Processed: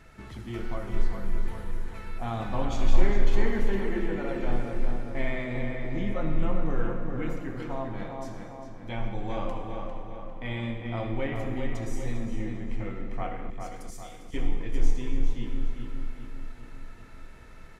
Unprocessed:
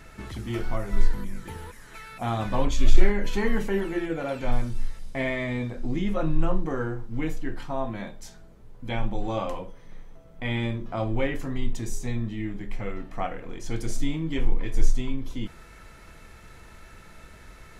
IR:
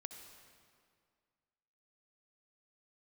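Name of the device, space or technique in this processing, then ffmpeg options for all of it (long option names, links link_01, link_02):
swimming-pool hall: -filter_complex "[1:a]atrim=start_sample=2205[link_01];[0:a][link_01]afir=irnorm=-1:irlink=0,highshelf=frequency=5300:gain=-5.5,asettb=1/sr,asplit=3[link_02][link_03][link_04];[link_02]atrim=end=13.504[link_05];[link_03]atrim=start=13.5:end=14.34,asetpts=PTS-STARTPTS,afade=type=in:duration=0.004:curve=qsin,afade=type=out:start_time=0.836:duration=0.004:curve=qsin,aderivative[link_06];[link_04]atrim=start=14.336[link_07];[link_05][link_06]acrossfade=duration=0.004:curve1=hsin:curve2=qsin[link_08];[link_08][link_07]acrossfade=duration=0.004:curve1=qsin:curve2=hsin,asplit=2[link_09][link_10];[link_10]adelay=401,lowpass=frequency=3300:poles=1,volume=-5dB,asplit=2[link_11][link_12];[link_12]adelay=401,lowpass=frequency=3300:poles=1,volume=0.54,asplit=2[link_13][link_14];[link_14]adelay=401,lowpass=frequency=3300:poles=1,volume=0.54,asplit=2[link_15][link_16];[link_16]adelay=401,lowpass=frequency=3300:poles=1,volume=0.54,asplit=2[link_17][link_18];[link_18]adelay=401,lowpass=frequency=3300:poles=1,volume=0.54,asplit=2[link_19][link_20];[link_20]adelay=401,lowpass=frequency=3300:poles=1,volume=0.54,asplit=2[link_21][link_22];[link_22]adelay=401,lowpass=frequency=3300:poles=1,volume=0.54[link_23];[link_09][link_11][link_13][link_15][link_17][link_19][link_21][link_23]amix=inputs=8:normalize=0"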